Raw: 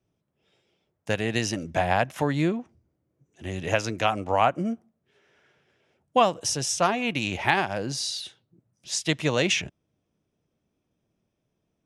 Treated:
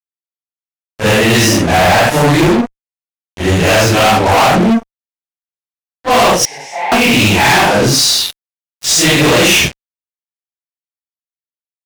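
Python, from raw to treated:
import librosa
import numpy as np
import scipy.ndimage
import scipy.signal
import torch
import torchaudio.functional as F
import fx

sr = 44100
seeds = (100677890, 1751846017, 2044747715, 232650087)

y = fx.phase_scramble(x, sr, seeds[0], window_ms=200)
y = fx.fuzz(y, sr, gain_db=33.0, gate_db=-41.0)
y = fx.double_bandpass(y, sr, hz=1300.0, octaves=1.3, at=(6.45, 6.92))
y = y * 10.0 ** (6.0 / 20.0)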